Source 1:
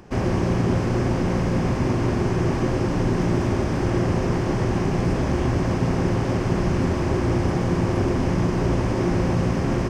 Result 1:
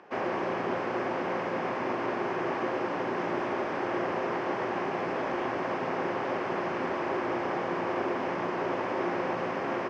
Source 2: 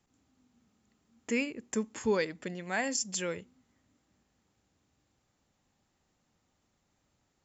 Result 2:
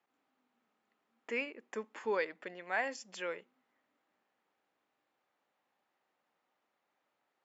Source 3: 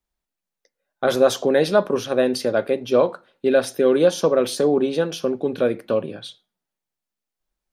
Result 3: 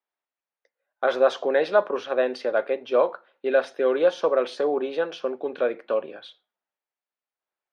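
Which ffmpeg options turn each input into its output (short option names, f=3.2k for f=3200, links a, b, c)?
-af "highpass=530,lowpass=2.5k"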